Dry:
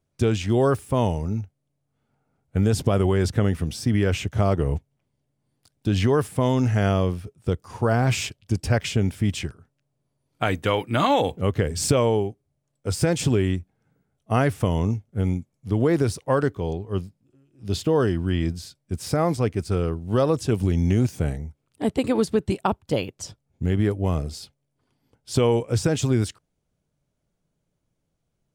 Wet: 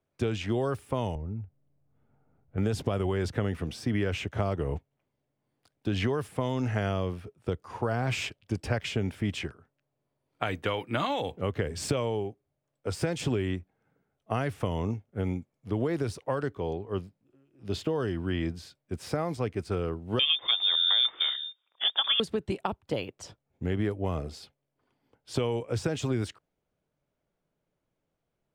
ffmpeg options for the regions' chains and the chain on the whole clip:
-filter_complex "[0:a]asettb=1/sr,asplit=3[s0][s1][s2];[s0]atrim=end=1.154[s3];[s1]atrim=start=1.15:end=2.58,asetpts=PTS-STARTPTS,afade=t=in:d=0.004:c=qsin,afade=t=out:st=1.426:d=0.004:c=qsin,aemphasis=mode=reproduction:type=riaa,acompressor=threshold=0.0178:ratio=2:attack=3.2:release=140:knee=1:detection=peak[s4];[s2]atrim=start=2.576[s5];[s3][s4]acrossfade=d=0.004:c1=hsin:c2=qsin[s6];[s6][s5]acrossfade=d=0.004:c1=qsin:c2=hsin,asettb=1/sr,asplit=3[s7][s8][s9];[s7]atrim=end=20.194[s10];[s8]atrim=start=20.19:end=22.2,asetpts=PTS-STARTPTS,afade=t=in:d=0.004:c=qsin,afade=t=out:st=2.006:d=0.004:c=qsin,highshelf=f=2800:g=11,lowpass=f=3100:t=q:w=0.5098,lowpass=f=3100:t=q:w=0.6013,lowpass=f=3100:t=q:w=0.9,lowpass=f=3100:t=q:w=2.563,afreqshift=-3700[s11];[s9]atrim=start=22.196[s12];[s10][s11]acrossfade=d=0.004:c1=hsin:c2=qsin[s13];[s13][s12]acrossfade=d=0.004:c1=qsin:c2=hsin,bass=f=250:g=-9,treble=f=4000:g=-12,acrossover=split=180|3000[s14][s15][s16];[s15]acompressor=threshold=0.0398:ratio=6[s17];[s14][s17][s16]amix=inputs=3:normalize=0"

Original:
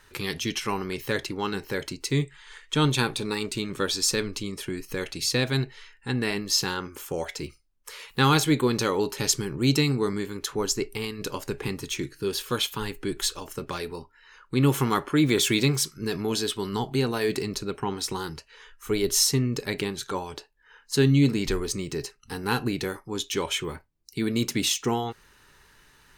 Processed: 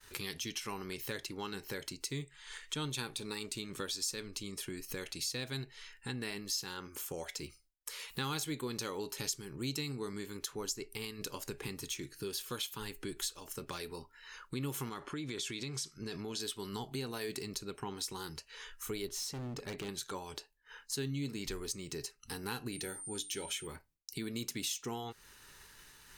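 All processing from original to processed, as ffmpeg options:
-filter_complex "[0:a]asettb=1/sr,asplit=3[s0][s1][s2];[s0]atrim=end=14.894[s3];[s1]atrim=start=14.89:end=16.4,asetpts=PTS-STARTPTS,afade=t=in:d=0.004:c=qsin,afade=t=out:st=1.506:d=0.004:c=qsin,lowpass=7100,acompressor=threshold=0.0501:ratio=4:attack=3.2:release=140:knee=1:detection=peak[s4];[s2]atrim=start=16.396[s5];[s3][s4]acrossfade=d=0.004:c1=hsin:c2=qsin[s6];[s6][s5]acrossfade=d=0.004:c1=qsin:c2=hsin,asettb=1/sr,asplit=3[s7][s8][s9];[s7]atrim=end=19.084[s10];[s8]atrim=start=19.08:end=19.89,asetpts=PTS-STARTPTS,afade=t=in:d=0.004:c=qsin,afade=t=out:st=0.806:d=0.004:c=qsin,lowpass=f=1900:p=1,asoftclip=type=hard:threshold=0.0355[s11];[s9]atrim=start=19.886[s12];[s10][s11]acrossfade=d=0.004:c1=hsin:c2=qsin[s13];[s13][s12]acrossfade=d=0.004:c1=qsin:c2=hsin,asettb=1/sr,asplit=3[s14][s15][s16];[s14]atrim=end=22.724[s17];[s15]atrim=start=22.72:end=23.67,asetpts=PTS-STARTPTS,afade=t=in:d=0.004:c=qsin,afade=t=out:st=0.946:d=0.004:c=qsin,bandreject=f=60:t=h:w=6,bandreject=f=120:t=h:w=6,bandreject=f=180:t=h:w=6,bandreject=f=240:t=h:w=6,bandreject=f=300:t=h:w=6,aeval=exprs='val(0)+0.00794*sin(2*PI*8900*n/s)':c=same,asuperstop=centerf=1100:order=20:qfactor=4.3[s18];[s16]atrim=start=23.666[s19];[s17][s18]acrossfade=d=0.004:c1=hsin:c2=qsin[s20];[s20][s19]acrossfade=d=0.004:c1=qsin:c2=hsin,agate=range=0.0224:threshold=0.00224:ratio=3:detection=peak,highshelf=f=3600:g=9.5,acompressor=threshold=0.00708:ratio=2.5,volume=0.891"

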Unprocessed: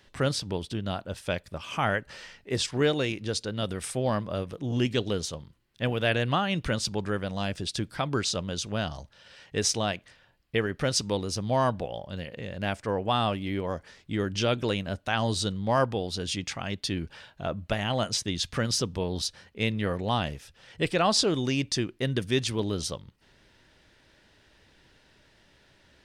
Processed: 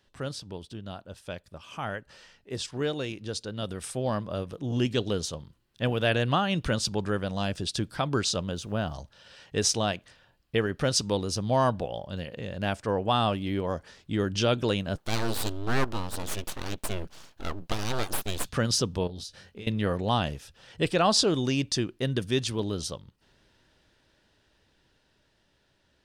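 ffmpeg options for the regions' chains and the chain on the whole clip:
-filter_complex "[0:a]asettb=1/sr,asplit=3[s0][s1][s2];[s0]atrim=end=8.514[s3];[s1]atrim=start=8.51:end=8.94,asetpts=PTS-STARTPTS,afade=t=in:d=0.004:c=qsin,afade=t=out:st=0.426:d=0.004:c=qsin,equalizer=f=5300:t=o:w=1.9:g=-10,aeval=exprs='val(0)*gte(abs(val(0)),0.00141)':c=same[s4];[s2]atrim=start=8.936[s5];[s3][s4]acrossfade=d=0.004:c1=hsin:c2=qsin[s6];[s6][s5]acrossfade=d=0.004:c1=qsin:c2=hsin,asettb=1/sr,asplit=3[s7][s8][s9];[s7]atrim=end=14.954[s10];[s8]atrim=start=14.95:end=18.49,asetpts=PTS-STARTPTS,afade=t=in:d=0.004:c=qsin,afade=t=out:st=3.536:d=0.004:c=qsin,lowpass=f=2200:p=1,aemphasis=mode=production:type=75fm,aeval=exprs='abs(val(0))':c=same[s11];[s9]atrim=start=18.486[s12];[s10][s11]acrossfade=d=0.004:c1=hsin:c2=qsin[s13];[s13][s12]acrossfade=d=0.004:c1=qsin:c2=hsin,asettb=1/sr,asplit=3[s14][s15][s16];[s14]atrim=end=19.074[s17];[s15]atrim=start=19.07:end=19.67,asetpts=PTS-STARTPTS,afade=t=in:d=0.004:c=qsin,afade=t=out:st=0.596:d=0.004:c=qsin,equalizer=f=980:t=o:w=0.46:g=-7.5,acompressor=threshold=0.0126:ratio=10:attack=3.2:release=140:knee=1:detection=peak,asplit=2[s18][s19];[s19]adelay=21,volume=0.473[s20];[s18][s20]amix=inputs=2:normalize=0,atrim=end_sample=26460[s21];[s16]atrim=start=19.666[s22];[s17][s21]acrossfade=d=0.004:c1=hsin:c2=qsin[s23];[s23][s22]acrossfade=d=0.004:c1=qsin:c2=hsin,equalizer=f=2100:w=3.2:g=-5,dynaudnorm=f=730:g=11:m=3.76,volume=0.398"

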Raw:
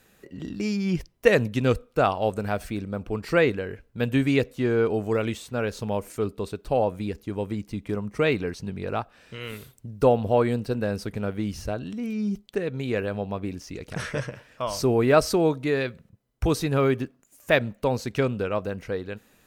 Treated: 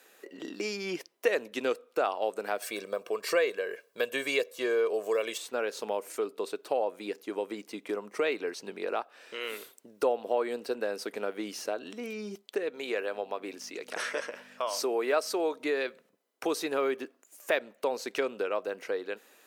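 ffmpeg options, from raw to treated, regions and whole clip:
-filter_complex "[0:a]asettb=1/sr,asplit=3[s0][s1][s2];[s0]atrim=end=2.624[s3];[s1]atrim=start=2.62:end=5.38,asetpts=PTS-STARTPTS,afade=t=in:d=0.004:c=qsin,afade=t=out:st=2.756:d=0.004:c=qsin,highshelf=f=4300:g=8,aecho=1:1:1.8:0.61,atrim=end_sample=121716[s4];[s2]atrim=start=5.376[s5];[s3][s4]acrossfade=d=0.004:c1=hsin:c2=qsin[s6];[s6][s5]acrossfade=d=0.004:c1=qsin:c2=hsin,asettb=1/sr,asplit=3[s7][s8][s9];[s7]atrim=end=12.704[s10];[s8]atrim=start=12.7:end=15.6,asetpts=PTS-STARTPTS,afade=t=in:d=0.004:c=qsin,afade=t=out:st=2.896:d=0.004:c=qsin,highpass=f=370:p=1,aeval=exprs='val(0)+0.0141*(sin(2*PI*50*n/s)+sin(2*PI*2*50*n/s)/2+sin(2*PI*3*50*n/s)/3+sin(2*PI*4*50*n/s)/4+sin(2*PI*5*50*n/s)/5)':c=same[s11];[s9]atrim=start=15.596[s12];[s10][s11]acrossfade=d=0.004:c1=hsin:c2=qsin[s13];[s13][s12]acrossfade=d=0.004:c1=qsin:c2=hsin,highpass=f=340:w=0.5412,highpass=f=340:w=1.3066,acompressor=threshold=0.0224:ratio=2,volume=1.26"

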